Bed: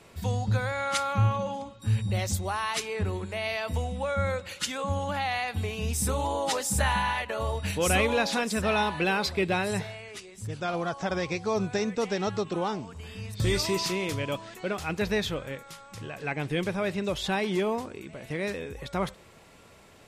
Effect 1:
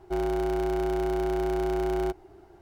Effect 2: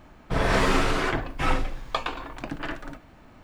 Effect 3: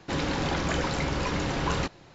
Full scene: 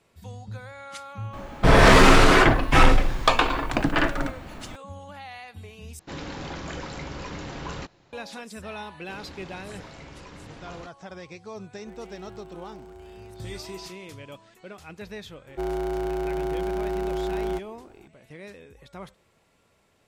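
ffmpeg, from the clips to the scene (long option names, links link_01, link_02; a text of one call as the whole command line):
ffmpeg -i bed.wav -i cue0.wav -i cue1.wav -i cue2.wav -filter_complex "[3:a]asplit=2[link_01][link_02];[1:a]asplit=2[link_03][link_04];[0:a]volume=-11.5dB[link_05];[2:a]aeval=exprs='0.422*sin(PI/2*2.24*val(0)/0.422)':channel_layout=same[link_06];[link_03]acompressor=threshold=-32dB:ratio=6:attack=3.2:release=140:knee=1:detection=peak[link_07];[link_05]asplit=2[link_08][link_09];[link_08]atrim=end=5.994[link_10];[link_01]atrim=end=2.14,asetpts=PTS-STARTPTS,volume=-7.5dB[link_11];[link_09]atrim=start=8.126[link_12];[link_06]atrim=end=3.43,asetpts=PTS-STARTPTS,afade=type=in:duration=0.004:curve=hsin,afade=type=out:start_time=3.426:duration=0.004:curve=hsin,adelay=1330[link_13];[link_02]atrim=end=2.14,asetpts=PTS-STARTPTS,volume=-16dB,afade=type=in:duration=0.004:curve=hsin,afade=type=out:start_time=2.136:duration=0.004:curve=hsin,adelay=9000[link_14];[link_07]atrim=end=2.61,asetpts=PTS-STARTPTS,volume=-13dB,afade=type=in:duration=0.004:curve=hsin,afade=type=out:start_time=2.606:duration=0.004:curve=hsin,adelay=11760[link_15];[link_04]atrim=end=2.61,asetpts=PTS-STARTPTS,volume=-1dB,afade=type=in:duration=0.004:curve=hsin,afade=type=out:start_time=2.606:duration=0.004:curve=hsin,adelay=15470[link_16];[link_10][link_11]acrossfade=duration=0.004:curve1=hsin:curve2=hsin[link_17];[link_17][link_12]acrossfade=duration=0.004:curve1=hsin:curve2=hsin[link_18];[link_18][link_13][link_14][link_15][link_16]amix=inputs=5:normalize=0" out.wav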